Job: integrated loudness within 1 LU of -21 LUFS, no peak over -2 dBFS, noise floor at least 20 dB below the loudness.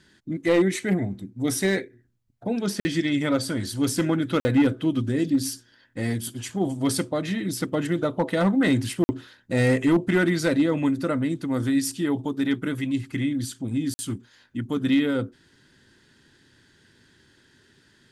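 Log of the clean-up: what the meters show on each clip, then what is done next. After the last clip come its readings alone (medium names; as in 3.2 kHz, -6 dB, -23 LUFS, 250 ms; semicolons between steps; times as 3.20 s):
clipped samples 0.3%; clipping level -13.5 dBFS; dropouts 4; longest dropout 50 ms; loudness -25.0 LUFS; peak level -13.5 dBFS; loudness target -21.0 LUFS
-> clip repair -13.5 dBFS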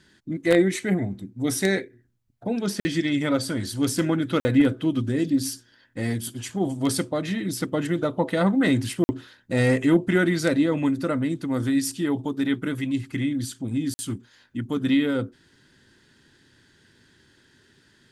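clipped samples 0.0%; dropouts 4; longest dropout 50 ms
-> interpolate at 2.80/4.40/9.04/13.94 s, 50 ms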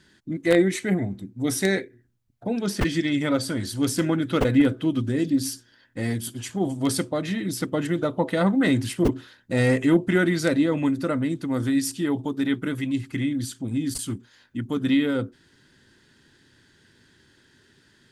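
dropouts 0; loudness -24.5 LUFS; peak level -4.5 dBFS; loudness target -21.0 LUFS
-> trim +3.5 dB; peak limiter -2 dBFS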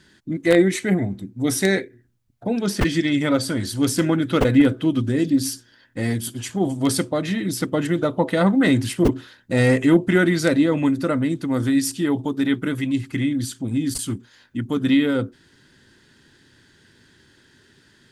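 loudness -21.0 LUFS; peak level -2.0 dBFS; noise floor -57 dBFS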